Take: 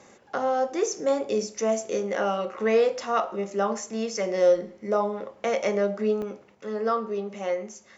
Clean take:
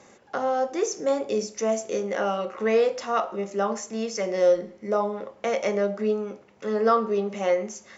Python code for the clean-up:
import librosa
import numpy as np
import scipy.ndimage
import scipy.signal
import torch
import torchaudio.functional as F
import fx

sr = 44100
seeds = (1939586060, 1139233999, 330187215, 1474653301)

y = fx.fix_interpolate(x, sr, at_s=(6.22,), length_ms=1.9)
y = fx.gain(y, sr, db=fx.steps((0.0, 0.0), (6.55, 5.0)))